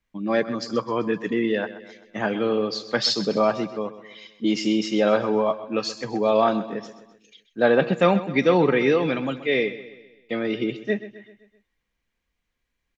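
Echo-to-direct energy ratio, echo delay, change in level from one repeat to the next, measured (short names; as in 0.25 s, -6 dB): -13.5 dB, 0.129 s, -6.0 dB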